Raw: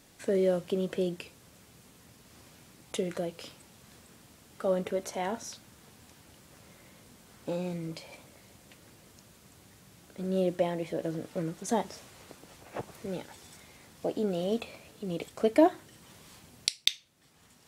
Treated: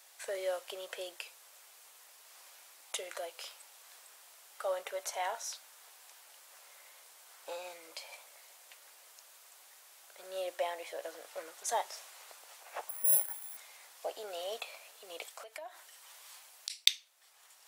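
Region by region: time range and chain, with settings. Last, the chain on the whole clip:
12.89–13.57 s: distance through air 220 m + careless resampling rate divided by 4×, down none, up zero stuff
15.28–16.70 s: high-pass 460 Hz 6 dB/octave + compression 5:1, threshold -40 dBFS
whole clip: high-pass 650 Hz 24 dB/octave; treble shelf 10 kHz +7 dB

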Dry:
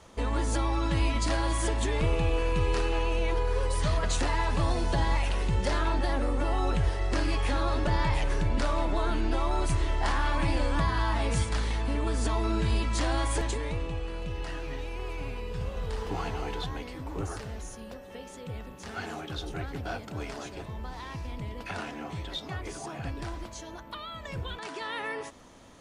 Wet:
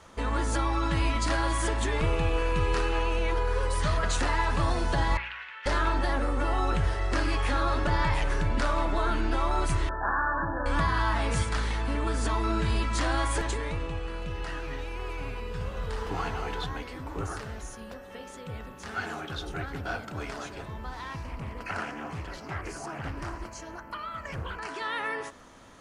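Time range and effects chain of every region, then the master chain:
5.17–5.66 s: Butterworth band-pass 2 kHz, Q 1.3 + loudspeaker Doppler distortion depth 0.13 ms
9.89–10.66 s: brick-wall FIR low-pass 1.8 kHz + tilt EQ +2 dB/octave
21.23–24.71 s: Butterworth band-stop 3.6 kHz, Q 3.3 + loudspeaker Doppler distortion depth 0.5 ms
whole clip: peaking EQ 1.4 kHz +6.5 dB 0.91 oct; de-hum 60.72 Hz, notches 29

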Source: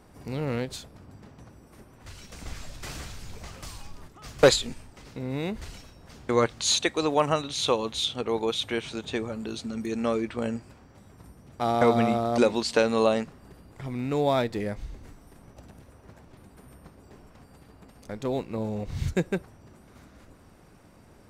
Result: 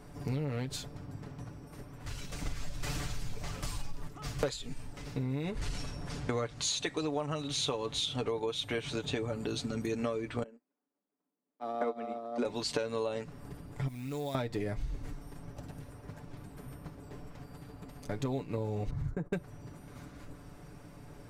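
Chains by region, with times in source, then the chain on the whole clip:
5.44–8.31 s: companding laws mixed up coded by mu + low-pass 11 kHz 24 dB/octave
10.43–12.45 s: steep high-pass 210 Hz 48 dB/octave + treble shelf 2.5 kHz -12 dB + upward expansion 2.5:1, over -41 dBFS
13.88–14.35 s: companding laws mixed up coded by mu + pre-emphasis filter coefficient 0.8 + compression 2:1, threshold -40 dBFS
18.90–19.33 s: gate -40 dBFS, range -19 dB + resonant high shelf 2 kHz -13.5 dB, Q 1.5 + compression 2.5:1, threshold -37 dBFS
whole clip: bass shelf 190 Hz +6 dB; comb 6.9 ms, depth 58%; compression 12:1, threshold -30 dBFS

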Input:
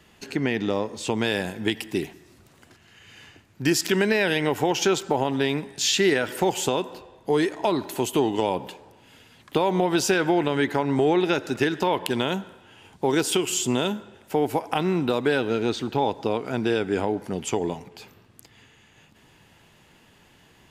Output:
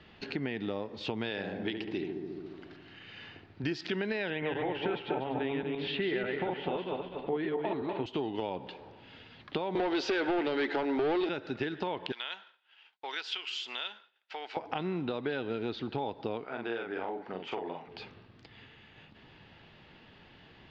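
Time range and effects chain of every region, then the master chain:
1.30–3.64 s: bass shelf 130 Hz -8.5 dB + filtered feedback delay 70 ms, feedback 78%, low-pass 910 Hz, level -4 dB
4.30–8.06 s: backward echo that repeats 121 ms, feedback 46%, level -2 dB + low-pass 3 kHz 24 dB/octave + delay 249 ms -12 dB
9.75–11.29 s: high-pass 290 Hz 24 dB/octave + band-stop 1.1 kHz, Q 6.7 + waveshaping leveller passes 3
12.12–14.57 s: high-pass 1.5 kHz + expander -48 dBFS
16.44–17.89 s: band-pass filter 1.2 kHz, Q 0.77 + doubling 43 ms -3.5 dB
whole clip: steep low-pass 4.5 kHz 36 dB/octave; band-stop 1 kHz, Q 20; compression 2.5:1, threshold -36 dBFS

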